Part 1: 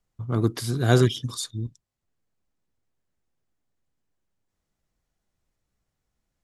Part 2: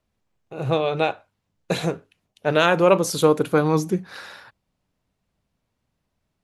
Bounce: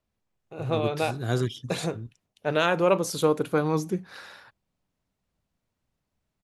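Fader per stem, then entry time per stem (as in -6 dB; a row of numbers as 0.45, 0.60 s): -8.0, -5.5 dB; 0.40, 0.00 s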